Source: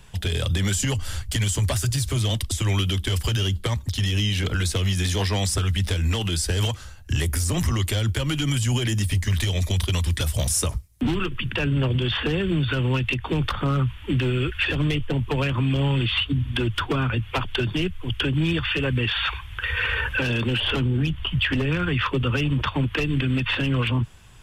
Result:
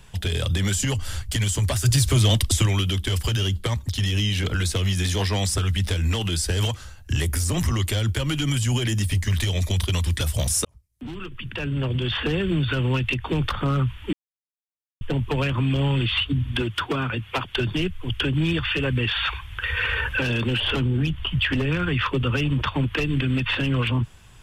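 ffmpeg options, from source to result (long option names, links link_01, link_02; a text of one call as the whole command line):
ffmpeg -i in.wav -filter_complex "[0:a]asettb=1/sr,asplit=3[link_01][link_02][link_03];[link_01]atrim=end=1.854[link_04];[link_02]atrim=start=1.85:end=2.66,asetpts=PTS-STARTPTS,afade=type=in:duration=0.004:curve=qsin,afade=type=out:start_time=0.806:duration=0.004:curve=qsin,acontrast=37[link_05];[link_03]atrim=start=2.656[link_06];[link_04][link_05]acrossfade=duration=0.004:curve1=hsin:curve2=qsin[link_07];[link_07][link_06]acrossfade=duration=0.004:curve1=qsin:curve2=hsin,asettb=1/sr,asplit=3[link_08][link_09][link_10];[link_08]atrim=end=16.624[link_11];[link_09]atrim=start=16.62:end=17.56,asetpts=PTS-STARTPTS,afade=type=in:duration=0.004:curve=qsin,afade=type=out:start_time=0.936:duration=0.004:curve=qsin,highpass=frequency=170:poles=1[link_12];[link_10]atrim=start=17.556[link_13];[link_11][link_12]acrossfade=duration=0.004:curve1=hsin:curve2=qsin[link_14];[link_14][link_13]acrossfade=duration=0.004:curve1=qsin:curve2=hsin,asplit=4[link_15][link_16][link_17][link_18];[link_15]atrim=end=10.65,asetpts=PTS-STARTPTS,afade=type=out:start_time=10.646:duration=0.004:curve=hsin[link_19];[link_16]atrim=start=10.65:end=14.13,asetpts=PTS-STARTPTS,afade=type=in:duration=1.66,afade=type=out:start_time=3.476:duration=0.004:curve=hsin[link_20];[link_17]atrim=start=14.13:end=15.01,asetpts=PTS-STARTPTS,volume=0[link_21];[link_18]atrim=start=15.01,asetpts=PTS-STARTPTS,afade=type=in:duration=0.004:curve=hsin[link_22];[link_19][link_20][link_21][link_22]concat=n=4:v=0:a=1" out.wav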